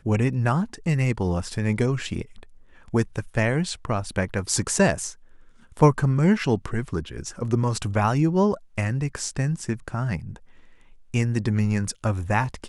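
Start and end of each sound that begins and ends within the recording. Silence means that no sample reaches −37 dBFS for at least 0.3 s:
0:02.88–0:05.13
0:05.72–0:10.36

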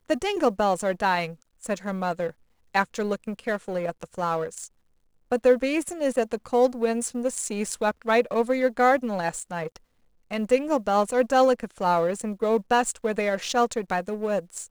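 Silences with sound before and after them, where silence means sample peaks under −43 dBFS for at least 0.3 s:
0:02.31–0:02.74
0:04.67–0:05.32
0:09.77–0:10.31

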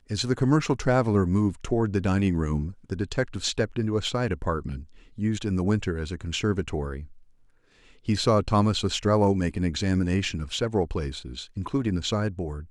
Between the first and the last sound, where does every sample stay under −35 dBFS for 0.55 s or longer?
0:07.04–0:08.08

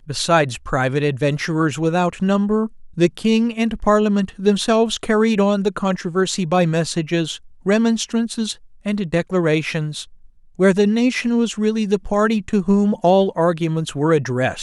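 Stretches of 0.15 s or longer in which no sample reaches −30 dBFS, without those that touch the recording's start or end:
0:02.67–0:02.98
0:07.37–0:07.66
0:08.53–0:08.86
0:10.04–0:10.59

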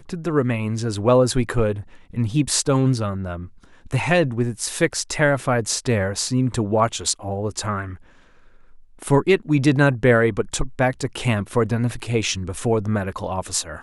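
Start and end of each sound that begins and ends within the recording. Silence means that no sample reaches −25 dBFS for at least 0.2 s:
0:02.17–0:03.36
0:03.91–0:07.86

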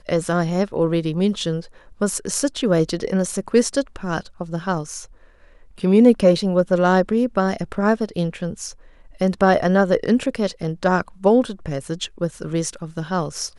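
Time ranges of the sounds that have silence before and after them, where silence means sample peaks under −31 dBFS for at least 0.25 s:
0:02.01–0:05.05
0:05.79–0:08.72

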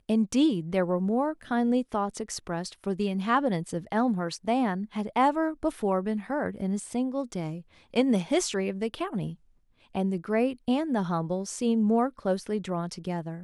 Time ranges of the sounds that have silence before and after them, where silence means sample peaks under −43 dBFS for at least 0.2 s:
0:07.94–0:09.35

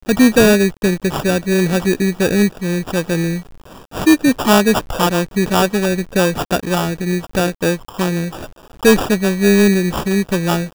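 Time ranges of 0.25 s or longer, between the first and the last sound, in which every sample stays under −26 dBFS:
0:03.41–0:03.94
0:08.46–0:08.83

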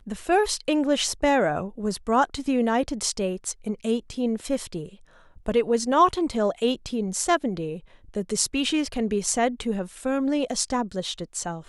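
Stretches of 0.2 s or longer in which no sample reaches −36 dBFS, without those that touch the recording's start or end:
0:04.88–0:05.46
0:07.78–0:08.14

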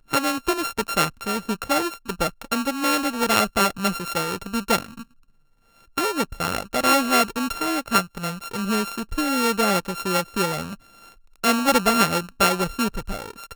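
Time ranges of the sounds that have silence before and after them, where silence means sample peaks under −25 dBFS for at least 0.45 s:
0:05.98–0:10.73

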